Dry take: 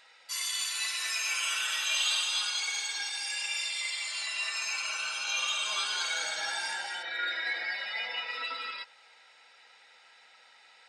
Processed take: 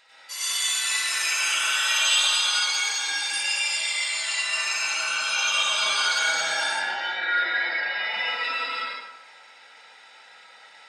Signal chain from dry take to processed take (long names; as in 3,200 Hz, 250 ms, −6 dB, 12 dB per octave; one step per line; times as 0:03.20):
0:06.64–0:08.04: Bessel low-pass filter 3,600 Hz, order 8
dense smooth reverb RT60 1 s, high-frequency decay 0.55×, pre-delay 80 ms, DRR −8.5 dB